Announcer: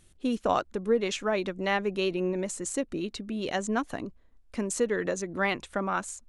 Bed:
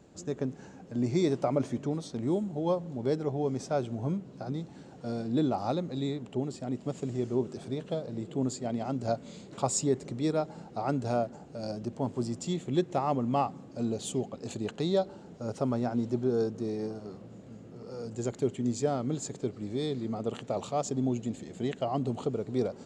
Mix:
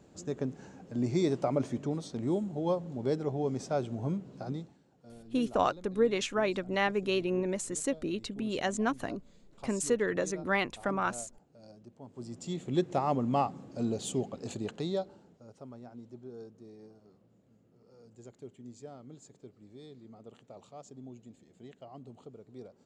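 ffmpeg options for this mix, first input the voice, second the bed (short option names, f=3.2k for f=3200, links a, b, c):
-filter_complex "[0:a]adelay=5100,volume=-1.5dB[a];[1:a]volume=15.5dB,afade=t=out:st=4.51:d=0.27:silence=0.158489,afade=t=in:st=12.08:d=0.77:silence=0.141254,afade=t=out:st=14.41:d=1.05:silence=0.133352[b];[a][b]amix=inputs=2:normalize=0"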